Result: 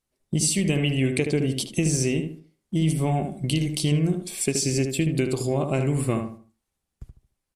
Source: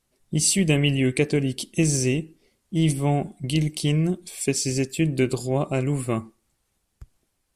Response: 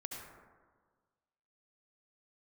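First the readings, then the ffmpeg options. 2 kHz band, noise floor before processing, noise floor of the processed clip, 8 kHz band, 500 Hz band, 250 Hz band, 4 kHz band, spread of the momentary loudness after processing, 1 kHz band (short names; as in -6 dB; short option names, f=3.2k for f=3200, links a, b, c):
-2.0 dB, -74 dBFS, -82 dBFS, -1.0 dB, -1.0 dB, -1.0 dB, -1.0 dB, 5 LU, -0.5 dB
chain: -filter_complex "[0:a]agate=range=-12dB:threshold=-46dB:ratio=16:detection=peak,acompressor=threshold=-23dB:ratio=6,asplit=2[a][b];[b]adelay=75,lowpass=f=2.1k:p=1,volume=-6dB,asplit=2[c][d];[d]adelay=75,lowpass=f=2.1k:p=1,volume=0.31,asplit=2[e][f];[f]adelay=75,lowpass=f=2.1k:p=1,volume=0.31,asplit=2[g][h];[h]adelay=75,lowpass=f=2.1k:p=1,volume=0.31[i];[a][c][e][g][i]amix=inputs=5:normalize=0,volume=3dB"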